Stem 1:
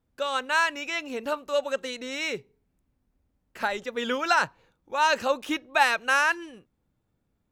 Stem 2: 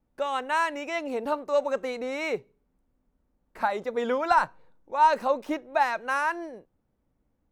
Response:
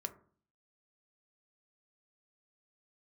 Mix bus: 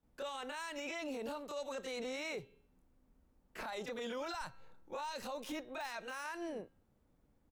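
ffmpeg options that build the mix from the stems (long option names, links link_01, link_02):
-filter_complex "[0:a]deesser=0.55,bandreject=frequency=267.7:width_type=h:width=4,bandreject=frequency=535.4:width_type=h:width=4,bandreject=frequency=803.1:width_type=h:width=4,bandreject=frequency=1070.8:width_type=h:width=4,bandreject=frequency=1338.5:width_type=h:width=4,bandreject=frequency=1606.2:width_type=h:width=4,bandreject=frequency=1873.9:width_type=h:width=4,bandreject=frequency=2141.6:width_type=h:width=4,bandreject=frequency=2409.3:width_type=h:width=4,bandreject=frequency=2677:width_type=h:width=4,bandreject=frequency=2944.7:width_type=h:width=4,bandreject=frequency=3212.4:width_type=h:width=4,bandreject=frequency=3480.1:width_type=h:width=4,bandreject=frequency=3747.8:width_type=h:width=4,bandreject=frequency=4015.5:width_type=h:width=4,bandreject=frequency=4283.2:width_type=h:width=4,bandreject=frequency=4550.9:width_type=h:width=4,acompressor=threshold=-28dB:ratio=6,volume=-6.5dB[link_01];[1:a]adelay=27,volume=0.5dB[link_02];[link_01][link_02]amix=inputs=2:normalize=0,acrossover=split=120|3000[link_03][link_04][link_05];[link_04]acompressor=threshold=-35dB:ratio=6[link_06];[link_03][link_06][link_05]amix=inputs=3:normalize=0,alimiter=level_in=10dB:limit=-24dB:level=0:latency=1:release=11,volume=-10dB"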